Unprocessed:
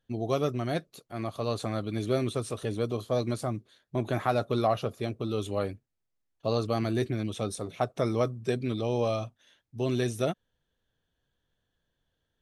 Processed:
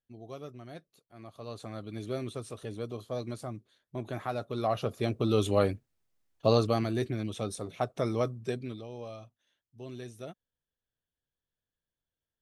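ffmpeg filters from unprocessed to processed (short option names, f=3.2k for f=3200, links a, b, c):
-af "volume=5dB,afade=t=in:st=1.15:d=0.82:silence=0.398107,afade=t=in:st=4.54:d=0.81:silence=0.237137,afade=t=out:st=6.47:d=0.41:silence=0.421697,afade=t=out:st=8.36:d=0.51:silence=0.251189"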